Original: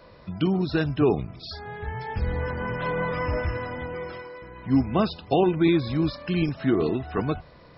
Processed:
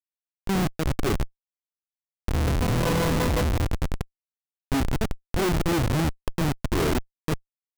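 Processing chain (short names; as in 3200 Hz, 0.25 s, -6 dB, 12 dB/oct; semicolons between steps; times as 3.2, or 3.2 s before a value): auto swell 0.182 s; Schmitt trigger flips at -25.5 dBFS; gain +7 dB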